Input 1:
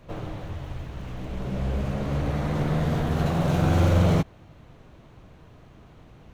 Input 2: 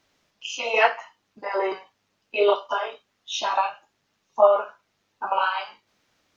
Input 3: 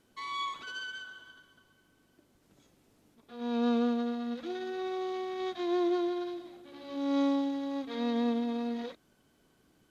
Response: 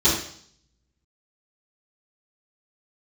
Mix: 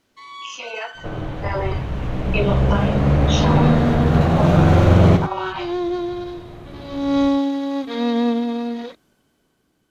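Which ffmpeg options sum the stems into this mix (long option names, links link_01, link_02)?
-filter_complex "[0:a]lowpass=frequency=2900:poles=1,adelay=950,volume=1.5dB,asplit=2[link_01][link_02];[link_02]volume=-8dB[link_03];[1:a]acompressor=threshold=-28dB:ratio=6,volume=-2dB[link_04];[2:a]volume=-1dB[link_05];[link_03]aecho=0:1:98:1[link_06];[link_01][link_04][link_05][link_06]amix=inputs=4:normalize=0,dynaudnorm=framelen=230:gausssize=13:maxgain=12.5dB"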